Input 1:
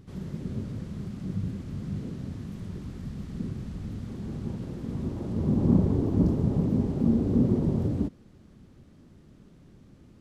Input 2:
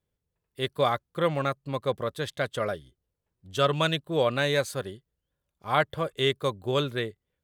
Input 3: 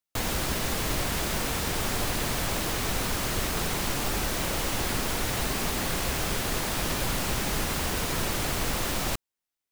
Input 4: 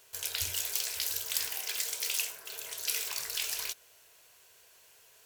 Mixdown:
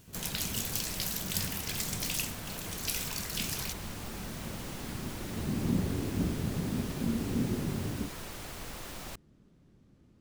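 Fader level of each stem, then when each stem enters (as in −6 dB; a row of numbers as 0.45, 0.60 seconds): −8.5 dB, muted, −14.0 dB, −2.0 dB; 0.00 s, muted, 0.00 s, 0.00 s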